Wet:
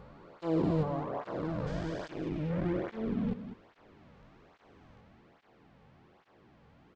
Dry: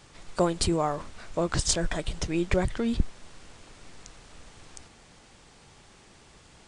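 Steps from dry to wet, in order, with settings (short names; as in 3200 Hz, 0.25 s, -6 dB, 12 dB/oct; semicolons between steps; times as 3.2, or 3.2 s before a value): stepped spectrum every 0.4 s; in parallel at -9 dB: bit-crush 5-bit; on the sum: tape spacing loss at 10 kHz 40 dB; echo 0.192 s -10.5 dB; speed mistake 25 fps video run at 24 fps; tape flanging out of phase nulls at 1.2 Hz, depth 3.2 ms; gain +2 dB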